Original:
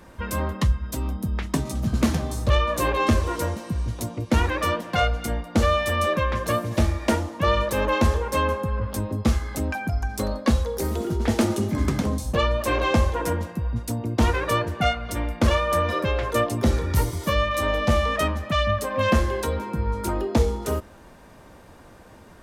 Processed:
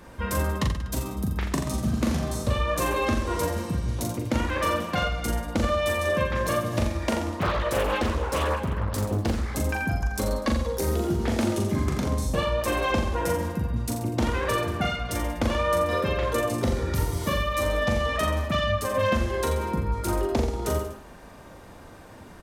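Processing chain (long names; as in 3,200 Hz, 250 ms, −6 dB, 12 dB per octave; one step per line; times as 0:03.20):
downward compressor, threshold −23 dBFS, peak gain reduction 9 dB
reverse bouncing-ball delay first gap 40 ms, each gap 1.1×, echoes 5
0:07.40–0:09.54: highs frequency-modulated by the lows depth 0.87 ms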